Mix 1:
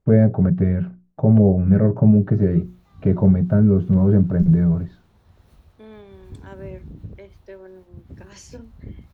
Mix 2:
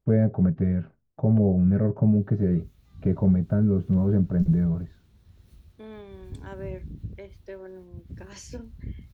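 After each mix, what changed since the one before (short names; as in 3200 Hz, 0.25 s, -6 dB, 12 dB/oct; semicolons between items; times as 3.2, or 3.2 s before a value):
first voice -7.0 dB; background: add bell 830 Hz -13 dB 2.2 oct; master: remove notches 60/120/180/240/300/360 Hz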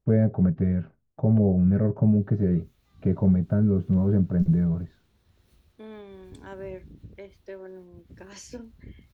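background: add tone controls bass -10 dB, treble -2 dB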